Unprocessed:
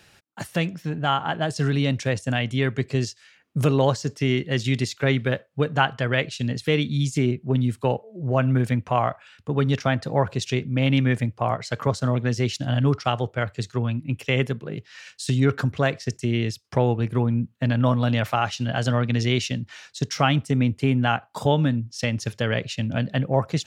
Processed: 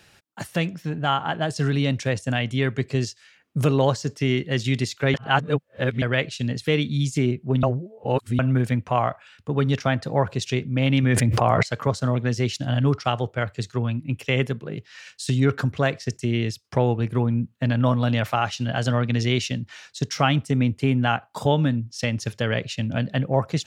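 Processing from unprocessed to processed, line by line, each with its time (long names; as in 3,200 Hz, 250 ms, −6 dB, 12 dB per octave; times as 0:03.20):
0:05.14–0:06.02: reverse
0:07.63–0:08.39: reverse
0:11.03–0:11.63: envelope flattener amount 100%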